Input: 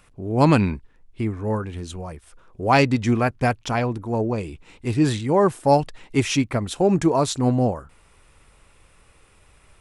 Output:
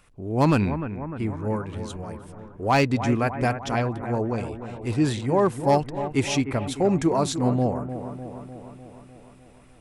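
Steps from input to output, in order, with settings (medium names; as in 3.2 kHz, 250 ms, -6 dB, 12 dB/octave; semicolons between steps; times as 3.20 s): overload inside the chain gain 9 dB; bucket-brigade echo 301 ms, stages 4096, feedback 63%, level -10.5 dB; trim -3 dB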